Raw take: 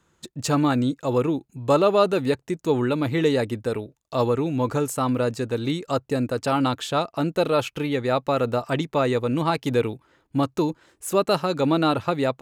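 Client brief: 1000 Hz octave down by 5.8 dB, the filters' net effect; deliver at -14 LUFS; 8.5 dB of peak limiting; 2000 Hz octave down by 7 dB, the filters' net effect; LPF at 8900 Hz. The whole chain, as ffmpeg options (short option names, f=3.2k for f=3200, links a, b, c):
-af "lowpass=8.9k,equalizer=f=1k:t=o:g=-5.5,equalizer=f=2k:t=o:g=-8,volume=14dB,alimiter=limit=-4.5dB:level=0:latency=1"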